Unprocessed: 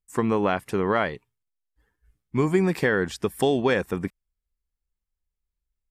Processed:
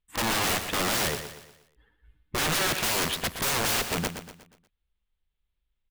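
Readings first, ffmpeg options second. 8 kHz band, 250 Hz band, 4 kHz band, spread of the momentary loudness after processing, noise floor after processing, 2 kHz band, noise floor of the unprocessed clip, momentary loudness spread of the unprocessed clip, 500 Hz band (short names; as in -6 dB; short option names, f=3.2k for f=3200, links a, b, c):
+15.5 dB, -9.5 dB, +10.5 dB, 10 LU, -80 dBFS, 0.0 dB, -85 dBFS, 9 LU, -10.0 dB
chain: -af "highshelf=f=4.5k:t=q:w=3:g=-9.5,aeval=exprs='(mod(17.8*val(0)+1,2)-1)/17.8':c=same,aecho=1:1:120|240|360|480|600:0.335|0.147|0.0648|0.0285|0.0126,volume=3.5dB"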